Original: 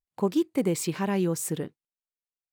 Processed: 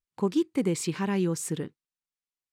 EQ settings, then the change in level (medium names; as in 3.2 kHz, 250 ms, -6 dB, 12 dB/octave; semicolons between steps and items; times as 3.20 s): low-pass 9.6 kHz 12 dB/octave; peaking EQ 640 Hz -8 dB 0.58 oct; 0.0 dB